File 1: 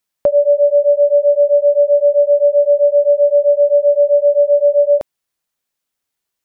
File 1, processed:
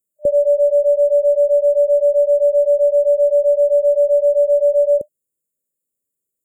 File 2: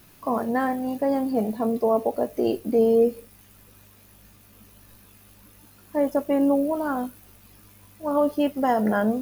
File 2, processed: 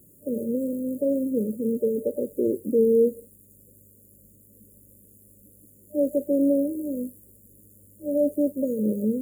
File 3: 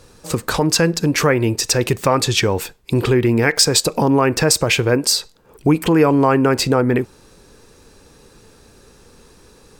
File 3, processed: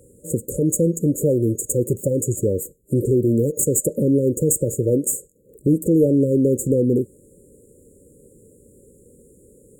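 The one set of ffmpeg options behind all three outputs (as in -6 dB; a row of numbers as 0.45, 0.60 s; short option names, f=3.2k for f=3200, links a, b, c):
-af "aeval=exprs='clip(val(0),-1,0.2)':c=same,highpass=f=99:p=1,afftfilt=real='re*(1-between(b*sr/4096,600,6700))':imag='im*(1-between(b*sr/4096,600,6700))':win_size=4096:overlap=0.75"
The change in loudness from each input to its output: -2.5, -1.5, -3.5 LU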